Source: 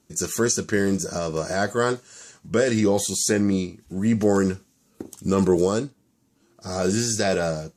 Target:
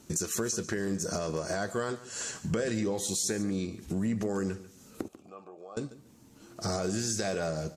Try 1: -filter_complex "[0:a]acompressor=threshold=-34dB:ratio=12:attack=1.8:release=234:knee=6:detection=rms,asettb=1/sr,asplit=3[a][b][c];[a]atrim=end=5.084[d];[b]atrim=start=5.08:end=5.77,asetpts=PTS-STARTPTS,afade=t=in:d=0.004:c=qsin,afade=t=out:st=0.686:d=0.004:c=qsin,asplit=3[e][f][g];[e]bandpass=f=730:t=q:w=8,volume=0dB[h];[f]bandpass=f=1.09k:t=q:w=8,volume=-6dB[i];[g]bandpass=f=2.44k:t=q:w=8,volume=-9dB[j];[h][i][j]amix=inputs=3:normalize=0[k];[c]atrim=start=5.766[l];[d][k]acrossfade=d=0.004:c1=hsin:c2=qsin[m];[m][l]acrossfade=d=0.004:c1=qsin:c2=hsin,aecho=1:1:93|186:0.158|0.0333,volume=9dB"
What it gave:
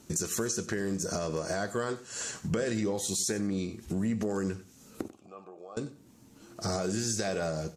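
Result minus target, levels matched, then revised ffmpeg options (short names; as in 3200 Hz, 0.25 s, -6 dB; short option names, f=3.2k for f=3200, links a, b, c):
echo 49 ms early
-filter_complex "[0:a]acompressor=threshold=-34dB:ratio=12:attack=1.8:release=234:knee=6:detection=rms,asettb=1/sr,asplit=3[a][b][c];[a]atrim=end=5.084[d];[b]atrim=start=5.08:end=5.77,asetpts=PTS-STARTPTS,afade=t=in:d=0.004:c=qsin,afade=t=out:st=0.686:d=0.004:c=qsin,asplit=3[e][f][g];[e]bandpass=f=730:t=q:w=8,volume=0dB[h];[f]bandpass=f=1.09k:t=q:w=8,volume=-6dB[i];[g]bandpass=f=2.44k:t=q:w=8,volume=-9dB[j];[h][i][j]amix=inputs=3:normalize=0[k];[c]atrim=start=5.766[l];[d][k]acrossfade=d=0.004:c1=hsin:c2=qsin[m];[m][l]acrossfade=d=0.004:c1=qsin:c2=hsin,aecho=1:1:142|284:0.158|0.0333,volume=9dB"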